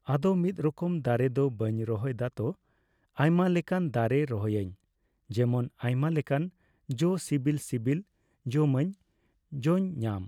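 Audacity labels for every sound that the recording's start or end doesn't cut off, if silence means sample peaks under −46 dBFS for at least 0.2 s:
3.170000	4.740000	sound
5.300000	6.490000	sound
6.890000	8.020000	sound
8.460000	8.940000	sound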